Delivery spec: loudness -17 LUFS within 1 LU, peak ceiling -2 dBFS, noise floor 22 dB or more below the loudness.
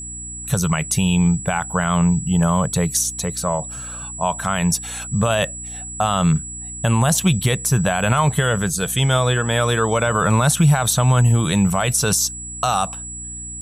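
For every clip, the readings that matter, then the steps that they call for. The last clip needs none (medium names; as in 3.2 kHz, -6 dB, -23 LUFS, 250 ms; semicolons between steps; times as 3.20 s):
hum 60 Hz; highest harmonic 300 Hz; hum level -37 dBFS; steady tone 7.8 kHz; tone level -30 dBFS; loudness -19.0 LUFS; peak level -5.5 dBFS; loudness target -17.0 LUFS
-> de-hum 60 Hz, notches 5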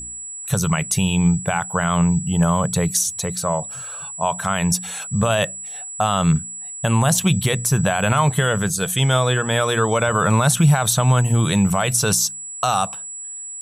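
hum not found; steady tone 7.8 kHz; tone level -30 dBFS
-> band-stop 7.8 kHz, Q 30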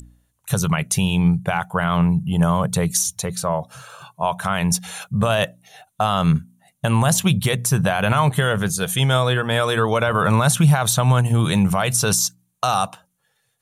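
steady tone not found; loudness -19.5 LUFS; peak level -5.5 dBFS; loudness target -17.0 LUFS
-> trim +2.5 dB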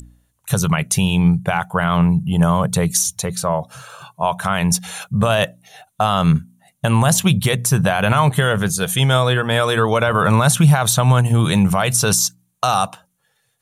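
loudness -17.0 LUFS; peak level -3.0 dBFS; noise floor -67 dBFS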